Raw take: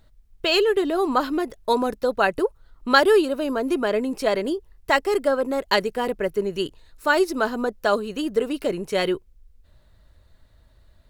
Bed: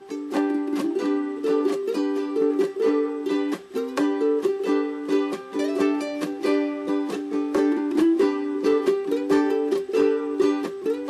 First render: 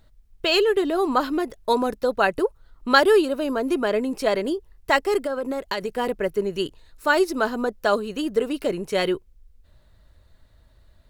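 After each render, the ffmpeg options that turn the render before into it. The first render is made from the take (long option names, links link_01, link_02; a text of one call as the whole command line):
ffmpeg -i in.wav -filter_complex "[0:a]asettb=1/sr,asplit=3[link_01][link_02][link_03];[link_01]atrim=end=5.194[link_04];[link_02]atrim=start=5.19:end=5.98,asetpts=PTS-STARTPTS,afade=type=in:duration=0.004:curve=qsin,afade=type=out:start_time=0.786:duration=0.004:curve=qsin,acompressor=threshold=-22dB:ratio=6:attack=3.2:release=140:knee=1:detection=peak[link_05];[link_03]atrim=start=5.976[link_06];[link_04][link_05]acrossfade=duration=0.004:curve1=hsin:curve2=qsin[link_07];[link_07][link_06]acrossfade=duration=0.004:curve1=qsin:curve2=hsin" out.wav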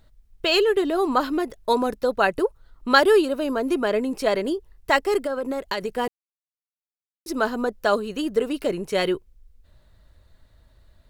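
ffmpeg -i in.wav -filter_complex "[0:a]asplit=3[link_01][link_02][link_03];[link_01]atrim=end=6.08,asetpts=PTS-STARTPTS,afade=type=out:start_time=6.076:duration=0.004:curve=hsin[link_04];[link_02]atrim=start=6.08:end=7.26,asetpts=PTS-STARTPTS,volume=0[link_05];[link_03]atrim=start=7.26,asetpts=PTS-STARTPTS,afade=type=in:duration=0.004:curve=hsin[link_06];[link_04][link_05][link_06]concat=n=3:v=0:a=1" out.wav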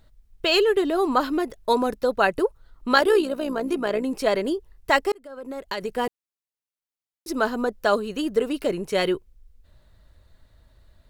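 ffmpeg -i in.wav -filter_complex "[0:a]asettb=1/sr,asplit=3[link_01][link_02][link_03];[link_01]atrim=end=2.944[link_04];[link_02]atrim=start=2.94:end=4.04,asetpts=PTS-STARTPTS,afade=type=in:duration=0.004:curve=qsin,afade=type=out:start_time=1.096:duration=0.004:curve=qsin,tremolo=f=61:d=0.519[link_05];[link_03]atrim=start=4.036[link_06];[link_04][link_05]acrossfade=duration=0.004:curve1=hsin:curve2=qsin[link_07];[link_07][link_06]acrossfade=duration=0.004:curve1=qsin:curve2=hsin,asplit=2[link_08][link_09];[link_08]atrim=end=5.12,asetpts=PTS-STARTPTS,afade=type=out:start_time=5.116:duration=0.004:curve=hsin[link_10];[link_09]atrim=start=5.12,asetpts=PTS-STARTPTS,afade=type=in:duration=0.84[link_11];[link_10][link_11]concat=n=2:v=0:a=1" out.wav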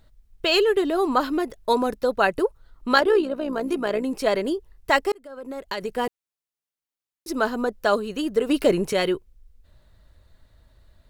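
ffmpeg -i in.wav -filter_complex "[0:a]asettb=1/sr,asplit=3[link_01][link_02][link_03];[link_01]atrim=end=3.004[link_04];[link_02]atrim=start=3:end=3.53,asetpts=PTS-STARTPTS,afade=type=in:duration=0.004:curve=qsin,afade=type=out:start_time=0.526:duration=0.004:curve=qsin,lowpass=frequency=2300:poles=1[link_05];[link_03]atrim=start=3.526[link_06];[link_04][link_05]acrossfade=duration=0.004:curve1=hsin:curve2=qsin[link_07];[link_07][link_06]acrossfade=duration=0.004:curve1=qsin:curve2=hsin,asettb=1/sr,asplit=3[link_08][link_09][link_10];[link_08]atrim=end=8.494[link_11];[link_09]atrim=start=8.49:end=8.93,asetpts=PTS-STARTPTS,afade=type=in:duration=0.004:curve=qsin,afade=type=out:start_time=0.436:duration=0.004:curve=qsin,acontrast=57[link_12];[link_10]atrim=start=8.926[link_13];[link_11][link_12]acrossfade=duration=0.004:curve1=hsin:curve2=qsin[link_14];[link_14][link_13]acrossfade=duration=0.004:curve1=qsin:curve2=hsin" out.wav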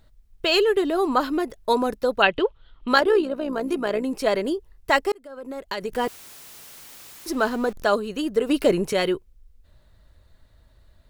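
ffmpeg -i in.wav -filter_complex "[0:a]asettb=1/sr,asplit=3[link_01][link_02][link_03];[link_01]atrim=end=2.224[link_04];[link_02]atrim=start=2.22:end=2.88,asetpts=PTS-STARTPTS,afade=type=in:duration=0.004:curve=qsin,afade=type=out:start_time=0.656:duration=0.004:curve=qsin,lowpass=frequency=3200:width_type=q:width=6[link_05];[link_03]atrim=start=2.876[link_06];[link_04][link_05]acrossfade=duration=0.004:curve1=hsin:curve2=qsin[link_07];[link_07][link_06]acrossfade=duration=0.004:curve1=qsin:curve2=hsin,asettb=1/sr,asplit=3[link_08][link_09][link_10];[link_08]atrim=end=5.924[link_11];[link_09]atrim=start=5.92:end=7.84,asetpts=PTS-STARTPTS,afade=type=in:duration=0.004:curve=qsin,afade=type=out:start_time=1.916:duration=0.004:curve=qsin,aeval=exprs='val(0)+0.5*0.0168*sgn(val(0))':channel_layout=same[link_12];[link_10]atrim=start=7.836[link_13];[link_11][link_12]acrossfade=duration=0.004:curve1=hsin:curve2=qsin[link_14];[link_14][link_13]acrossfade=duration=0.004:curve1=qsin:curve2=hsin" out.wav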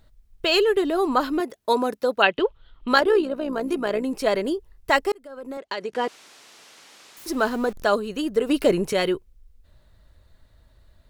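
ffmpeg -i in.wav -filter_complex "[0:a]asettb=1/sr,asplit=3[link_01][link_02][link_03];[link_01]atrim=end=1.404[link_04];[link_02]atrim=start=1.4:end=2.39,asetpts=PTS-STARTPTS,afade=type=in:duration=0.004:curve=qsin,afade=type=out:start_time=0.986:duration=0.004:curve=qsin,highpass=190[link_05];[link_03]atrim=start=2.386[link_06];[link_04][link_05]acrossfade=duration=0.004:curve1=hsin:curve2=qsin[link_07];[link_07][link_06]acrossfade=duration=0.004:curve1=qsin:curve2=hsin,asettb=1/sr,asplit=3[link_08][link_09][link_10];[link_08]atrim=end=5.574[link_11];[link_09]atrim=start=5.57:end=7.17,asetpts=PTS-STARTPTS,afade=type=in:duration=0.004:curve=qsin,afade=type=out:start_time=1.596:duration=0.004:curve=qsin,highpass=250,lowpass=6000[link_12];[link_10]atrim=start=7.166[link_13];[link_11][link_12]acrossfade=duration=0.004:curve1=hsin:curve2=qsin[link_14];[link_14][link_13]acrossfade=duration=0.004:curve1=qsin:curve2=hsin" out.wav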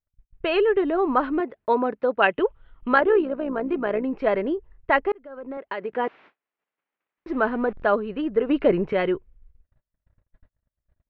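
ffmpeg -i in.wav -af "lowpass=frequency=2400:width=0.5412,lowpass=frequency=2400:width=1.3066,agate=range=-37dB:threshold=-49dB:ratio=16:detection=peak" out.wav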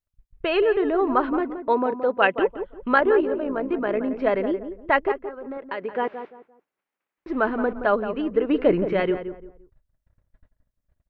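ffmpeg -i in.wav -filter_complex "[0:a]asplit=2[link_01][link_02];[link_02]adelay=173,lowpass=frequency=1300:poles=1,volume=-9dB,asplit=2[link_03][link_04];[link_04]adelay=173,lowpass=frequency=1300:poles=1,volume=0.3,asplit=2[link_05][link_06];[link_06]adelay=173,lowpass=frequency=1300:poles=1,volume=0.3[link_07];[link_01][link_03][link_05][link_07]amix=inputs=4:normalize=0" out.wav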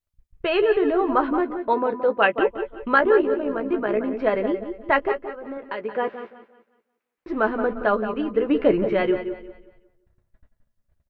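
ffmpeg -i in.wav -filter_complex "[0:a]asplit=2[link_01][link_02];[link_02]adelay=14,volume=-8.5dB[link_03];[link_01][link_03]amix=inputs=2:normalize=0,aecho=1:1:182|364|546|728:0.2|0.0738|0.0273|0.0101" out.wav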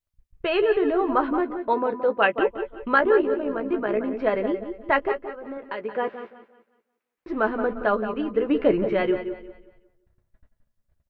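ffmpeg -i in.wav -af "volume=-1.5dB" out.wav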